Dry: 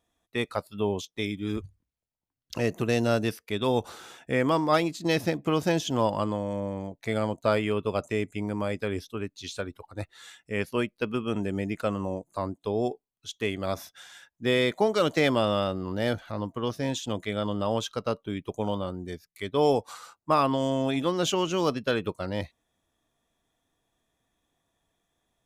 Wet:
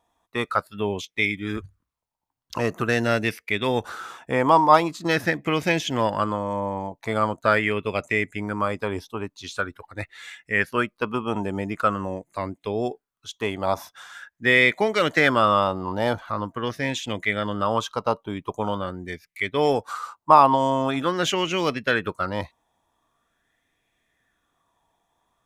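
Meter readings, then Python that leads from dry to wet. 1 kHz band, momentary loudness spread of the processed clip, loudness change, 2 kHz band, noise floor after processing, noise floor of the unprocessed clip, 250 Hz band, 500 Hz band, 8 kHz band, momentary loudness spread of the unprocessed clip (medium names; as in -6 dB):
+9.0 dB, 15 LU, +5.0 dB, +10.5 dB, -82 dBFS, -85 dBFS, +1.5 dB, +2.5 dB, +1.5 dB, 12 LU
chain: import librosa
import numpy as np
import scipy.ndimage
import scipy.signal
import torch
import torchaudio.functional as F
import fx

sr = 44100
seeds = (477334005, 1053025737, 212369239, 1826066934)

y = fx.bell_lfo(x, sr, hz=0.44, low_hz=890.0, high_hz=2200.0, db=15)
y = F.gain(torch.from_numpy(y), 1.0).numpy()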